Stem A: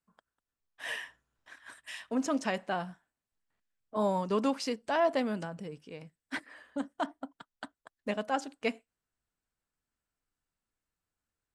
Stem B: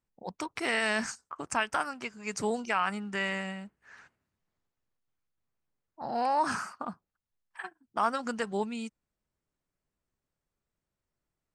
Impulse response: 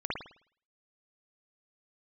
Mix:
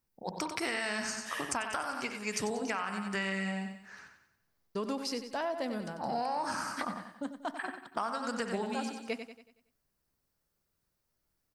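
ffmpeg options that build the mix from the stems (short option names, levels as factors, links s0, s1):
-filter_complex "[0:a]adelay=450,volume=0.708,asplit=3[s0][s1][s2];[s0]atrim=end=2.7,asetpts=PTS-STARTPTS,afade=t=out:st=2.696:d=0.004:c=hsin[s3];[s1]atrim=start=2.7:end=4.75,asetpts=PTS-STARTPTS,volume=0[s4];[s2]atrim=start=4.75,asetpts=PTS-STARTPTS,afade=t=in:d=0.004:c=hsin[s5];[s3][s4][s5]concat=n=3:v=0:a=1,asplit=2[s6][s7];[s7]volume=0.299[s8];[1:a]volume=1.06,asplit=3[s9][s10][s11];[s10]volume=0.188[s12];[s11]volume=0.447[s13];[2:a]atrim=start_sample=2205[s14];[s12][s14]afir=irnorm=-1:irlink=0[s15];[s8][s13]amix=inputs=2:normalize=0,aecho=0:1:93|186|279|372|465|558:1|0.44|0.194|0.0852|0.0375|0.0165[s16];[s6][s9][s15][s16]amix=inputs=4:normalize=0,aexciter=amount=1.6:drive=5.7:freq=4300,acompressor=threshold=0.0316:ratio=12"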